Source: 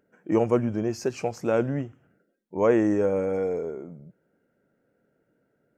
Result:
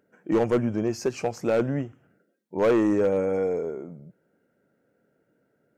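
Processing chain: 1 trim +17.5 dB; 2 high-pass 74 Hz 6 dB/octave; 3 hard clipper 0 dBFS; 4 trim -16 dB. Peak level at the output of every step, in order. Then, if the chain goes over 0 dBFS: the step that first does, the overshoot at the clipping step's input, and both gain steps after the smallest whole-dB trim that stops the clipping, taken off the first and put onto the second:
+9.0 dBFS, +9.0 dBFS, 0.0 dBFS, -16.0 dBFS; step 1, 9.0 dB; step 1 +8.5 dB, step 4 -7 dB

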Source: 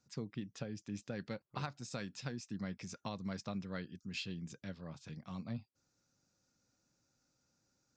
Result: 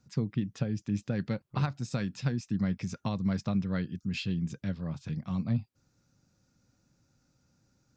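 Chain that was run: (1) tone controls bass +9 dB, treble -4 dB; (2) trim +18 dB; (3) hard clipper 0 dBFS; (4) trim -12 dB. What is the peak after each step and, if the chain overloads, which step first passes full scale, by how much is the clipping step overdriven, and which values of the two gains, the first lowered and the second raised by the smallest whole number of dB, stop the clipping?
-23.0 dBFS, -5.0 dBFS, -5.0 dBFS, -17.0 dBFS; nothing clips

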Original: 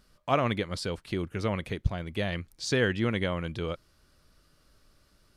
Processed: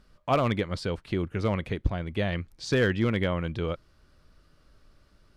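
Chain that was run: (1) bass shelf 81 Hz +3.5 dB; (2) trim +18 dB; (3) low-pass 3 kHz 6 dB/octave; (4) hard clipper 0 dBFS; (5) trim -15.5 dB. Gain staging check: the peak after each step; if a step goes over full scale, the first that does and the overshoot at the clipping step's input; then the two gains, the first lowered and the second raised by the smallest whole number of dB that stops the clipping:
-11.0 dBFS, +7.0 dBFS, +6.5 dBFS, 0.0 dBFS, -15.5 dBFS; step 2, 6.5 dB; step 2 +11 dB, step 5 -8.5 dB

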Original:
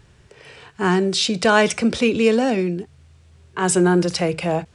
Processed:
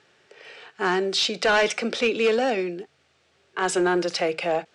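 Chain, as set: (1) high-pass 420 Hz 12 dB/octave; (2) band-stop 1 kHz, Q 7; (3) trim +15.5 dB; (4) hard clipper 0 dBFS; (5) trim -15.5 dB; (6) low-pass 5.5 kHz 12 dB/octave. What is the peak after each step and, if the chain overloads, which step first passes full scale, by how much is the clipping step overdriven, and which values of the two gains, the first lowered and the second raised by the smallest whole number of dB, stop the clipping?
-4.5 dBFS, -6.0 dBFS, +9.5 dBFS, 0.0 dBFS, -15.5 dBFS, -14.5 dBFS; step 3, 9.5 dB; step 3 +5.5 dB, step 5 -5.5 dB

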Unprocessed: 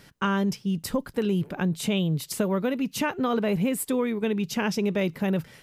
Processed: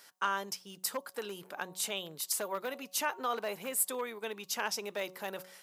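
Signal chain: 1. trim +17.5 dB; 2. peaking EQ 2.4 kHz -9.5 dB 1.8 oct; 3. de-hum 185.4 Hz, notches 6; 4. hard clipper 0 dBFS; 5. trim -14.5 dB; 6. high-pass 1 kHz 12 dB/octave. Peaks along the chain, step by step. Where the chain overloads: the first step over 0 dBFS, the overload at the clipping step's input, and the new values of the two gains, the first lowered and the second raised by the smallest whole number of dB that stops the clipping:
+5.5 dBFS, +5.0 dBFS, +4.5 dBFS, 0.0 dBFS, -14.5 dBFS, -16.5 dBFS; step 1, 4.5 dB; step 1 +12.5 dB, step 5 -9.5 dB

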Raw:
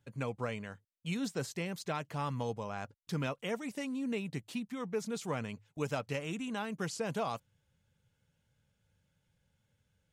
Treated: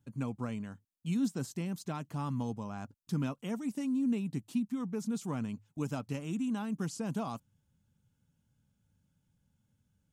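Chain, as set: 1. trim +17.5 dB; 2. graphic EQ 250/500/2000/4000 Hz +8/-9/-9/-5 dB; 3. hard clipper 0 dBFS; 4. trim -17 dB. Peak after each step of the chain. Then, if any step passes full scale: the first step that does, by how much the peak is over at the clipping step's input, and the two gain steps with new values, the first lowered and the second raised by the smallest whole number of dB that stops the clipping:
-4.5 dBFS, -5.5 dBFS, -5.5 dBFS, -22.5 dBFS; nothing clips

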